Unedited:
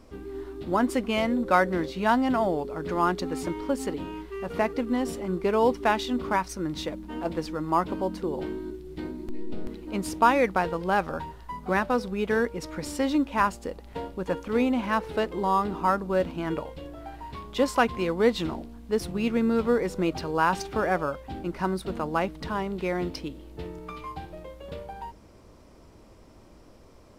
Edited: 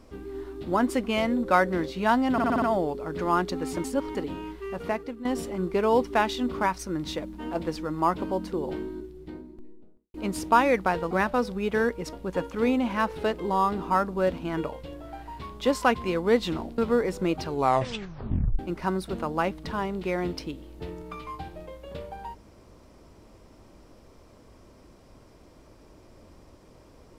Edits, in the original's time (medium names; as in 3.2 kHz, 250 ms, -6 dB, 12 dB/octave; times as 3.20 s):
2.32 s: stutter 0.06 s, 6 plays
3.54–3.85 s: reverse
4.40–4.95 s: fade out, to -14 dB
8.30–9.84 s: studio fade out
10.81–11.67 s: delete
12.69–14.06 s: delete
18.71–19.55 s: delete
20.23 s: tape stop 1.13 s